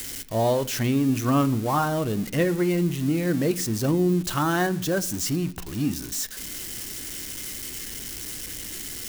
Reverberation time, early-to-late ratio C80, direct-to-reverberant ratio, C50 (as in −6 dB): 0.70 s, 21.0 dB, 11.0 dB, 18.5 dB